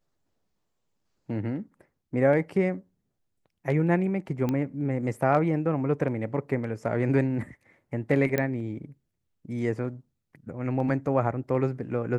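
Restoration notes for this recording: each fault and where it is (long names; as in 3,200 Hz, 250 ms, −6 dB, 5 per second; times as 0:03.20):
0:04.49: click −16 dBFS
0:08.38: click −12 dBFS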